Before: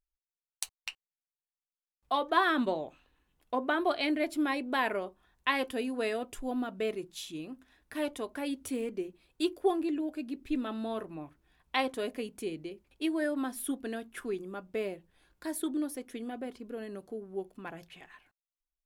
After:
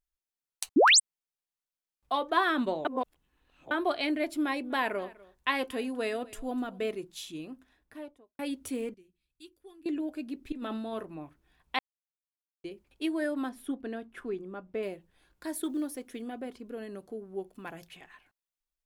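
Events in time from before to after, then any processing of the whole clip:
0.76–1.00 s: painted sound rise 230–10000 Hz -19 dBFS
2.85–3.71 s: reverse
4.22–6.88 s: delay 248 ms -21.5 dB
7.46–8.39 s: studio fade out
8.94–9.86 s: amplifier tone stack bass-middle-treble 6-0-2
10.52–10.93 s: compressor with a negative ratio -37 dBFS
11.79–12.64 s: mute
13.49–14.83 s: low-pass 1.9 kHz 6 dB/octave
15.62–16.22 s: companded quantiser 8-bit
17.54–17.97 s: treble shelf 5.1 kHz +7.5 dB

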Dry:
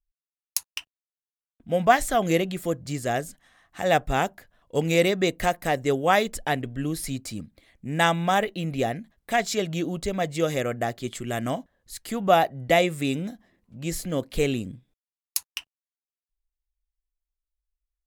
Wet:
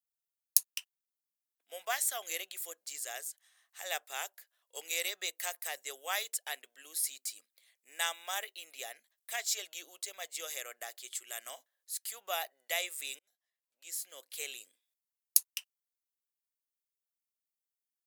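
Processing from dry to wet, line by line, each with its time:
13.19–14.59 s: fade in
whole clip: high-pass 420 Hz 24 dB/octave; differentiator

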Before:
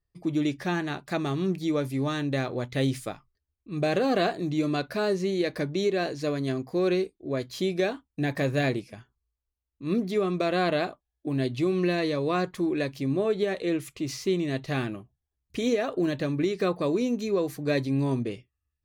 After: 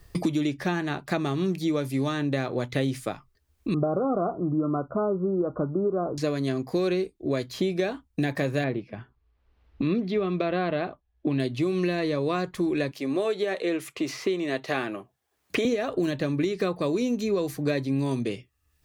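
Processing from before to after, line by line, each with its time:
3.74–6.18 s: Chebyshev low-pass 1.4 kHz, order 10
8.64–11.40 s: distance through air 340 m
12.91–15.65 s: high-pass 400 Hz
whole clip: three bands compressed up and down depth 100%

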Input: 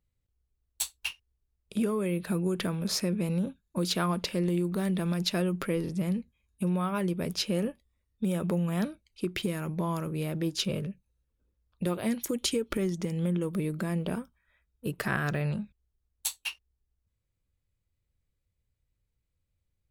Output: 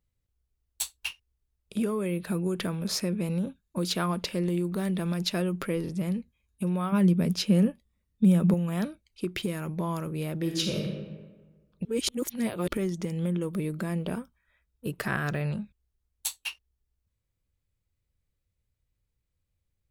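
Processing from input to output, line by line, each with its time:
6.92–8.54 s: peaking EQ 190 Hz +10.5 dB 0.76 oct
10.39–10.85 s: reverb throw, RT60 1.4 s, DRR 1.5 dB
11.85–12.68 s: reverse

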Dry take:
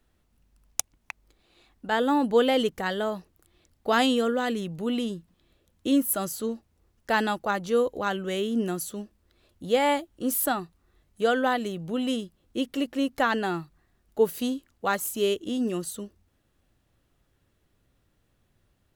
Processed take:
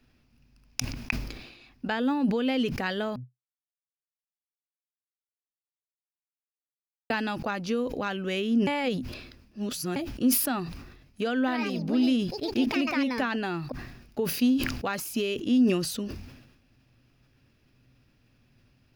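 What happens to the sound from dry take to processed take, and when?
3.16–7.10 s: mute
8.67–9.96 s: reverse
11.38–14.20 s: ever faster or slower copies 100 ms, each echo +4 st, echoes 2, each echo -6 dB
whole clip: compression 5:1, threshold -30 dBFS; graphic EQ with 31 bands 125 Hz +12 dB, 250 Hz +11 dB, 1.6 kHz +3 dB, 2.5 kHz +11 dB, 5 kHz +11 dB, 8 kHz -10 dB, 12.5 kHz -6 dB; decay stretcher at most 57 dB/s; trim +1 dB

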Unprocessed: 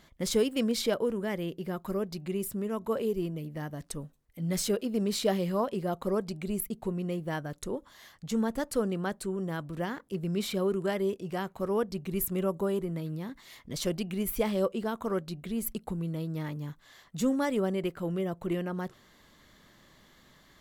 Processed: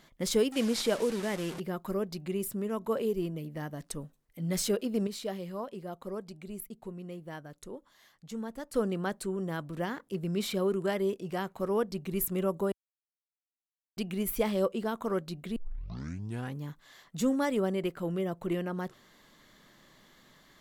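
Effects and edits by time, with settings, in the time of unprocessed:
0.52–1.60 s: one-bit delta coder 64 kbps, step -34.5 dBFS
5.07–8.74 s: gain -8.5 dB
12.72–13.97 s: mute
15.56 s: tape start 1.05 s
whole clip: peaking EQ 65 Hz -13 dB 0.89 oct

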